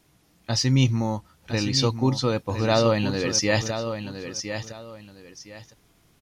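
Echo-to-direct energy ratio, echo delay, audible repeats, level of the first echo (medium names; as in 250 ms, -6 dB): -8.5 dB, 1012 ms, 2, -9.0 dB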